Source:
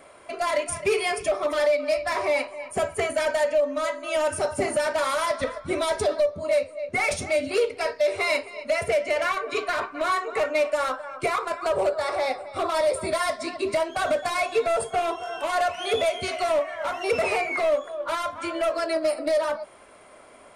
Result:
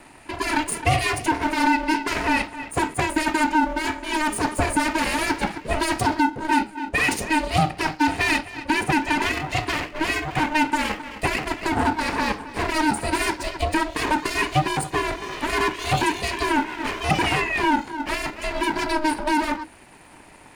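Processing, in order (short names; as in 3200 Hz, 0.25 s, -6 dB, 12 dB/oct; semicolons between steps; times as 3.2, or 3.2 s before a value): minimum comb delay 0.44 ms; ring modulator 310 Hz; gain +7 dB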